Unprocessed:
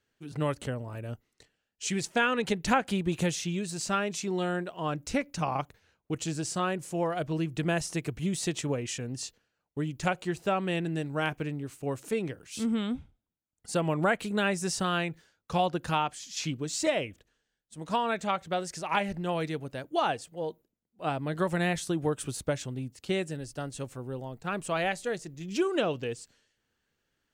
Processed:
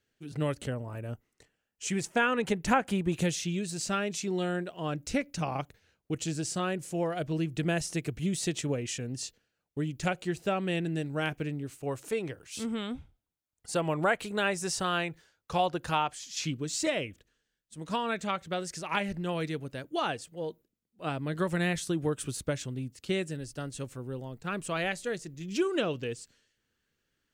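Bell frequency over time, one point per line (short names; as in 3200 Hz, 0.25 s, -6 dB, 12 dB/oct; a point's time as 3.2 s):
bell -6 dB 0.86 oct
1000 Hz
from 0.72 s 4100 Hz
from 3.14 s 1000 Hz
from 11.78 s 210 Hz
from 16.33 s 780 Hz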